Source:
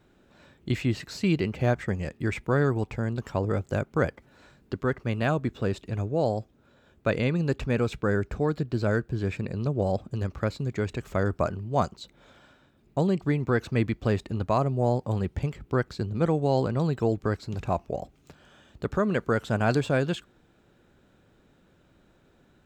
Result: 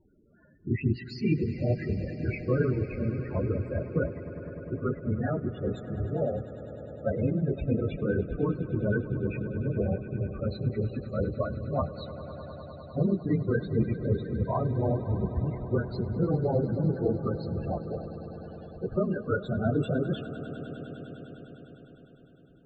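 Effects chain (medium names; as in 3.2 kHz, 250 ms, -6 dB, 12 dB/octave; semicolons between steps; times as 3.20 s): phase randomisation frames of 50 ms; loudest bins only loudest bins 16; dynamic bell 730 Hz, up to -5 dB, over -42 dBFS, Q 2.3; echo with a slow build-up 101 ms, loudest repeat 5, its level -17.5 dB; trim -1.5 dB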